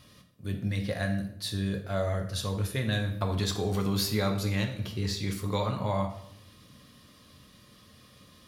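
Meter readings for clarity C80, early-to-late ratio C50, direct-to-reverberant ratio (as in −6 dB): 11.5 dB, 8.5 dB, 3.0 dB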